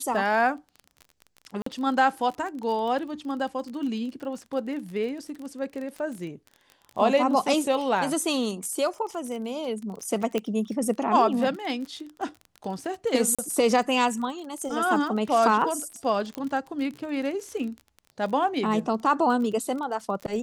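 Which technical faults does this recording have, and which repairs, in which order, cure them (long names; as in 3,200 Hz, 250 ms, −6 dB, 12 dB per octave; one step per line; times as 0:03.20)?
surface crackle 31 per second −33 dBFS
0:01.62–0:01.66: drop-out 44 ms
0:10.38: click −14 dBFS
0:13.35–0:13.39: drop-out 36 ms
0:16.35: click −18 dBFS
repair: click removal
repair the gap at 0:01.62, 44 ms
repair the gap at 0:13.35, 36 ms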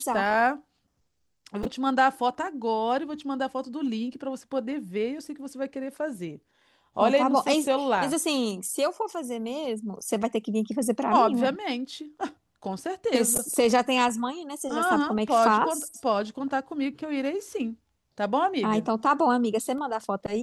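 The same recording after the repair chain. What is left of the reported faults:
none of them is left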